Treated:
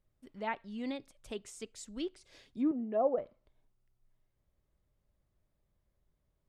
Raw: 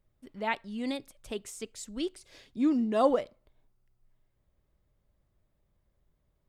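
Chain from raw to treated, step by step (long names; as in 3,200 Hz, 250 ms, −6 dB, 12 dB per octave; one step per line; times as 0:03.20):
0:02.71–0:03.18: loudspeaker in its box 240–2,300 Hz, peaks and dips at 310 Hz −8 dB, 670 Hz +4 dB, 990 Hz −9 dB, 1,500 Hz −7 dB, 2,100 Hz −5 dB
treble cut that deepens with the level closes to 1,100 Hz, closed at −23.5 dBFS
level −4.5 dB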